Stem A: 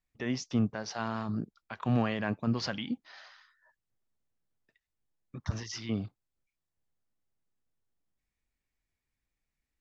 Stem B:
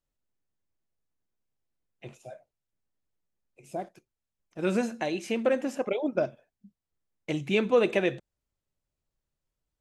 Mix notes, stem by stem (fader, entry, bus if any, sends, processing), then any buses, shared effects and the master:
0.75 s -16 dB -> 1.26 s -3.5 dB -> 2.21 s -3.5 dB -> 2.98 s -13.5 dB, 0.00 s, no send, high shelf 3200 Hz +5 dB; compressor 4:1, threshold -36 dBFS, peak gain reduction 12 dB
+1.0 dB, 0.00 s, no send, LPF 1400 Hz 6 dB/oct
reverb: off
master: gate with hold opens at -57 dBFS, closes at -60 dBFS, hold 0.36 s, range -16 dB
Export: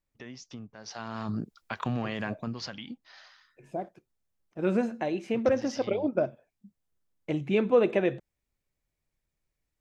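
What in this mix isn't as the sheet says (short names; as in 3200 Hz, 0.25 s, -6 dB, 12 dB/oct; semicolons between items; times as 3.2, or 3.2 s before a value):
stem A -16.0 dB -> -5.5 dB; master: missing gate with hold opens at -57 dBFS, closes at -60 dBFS, hold 0.36 s, range -16 dB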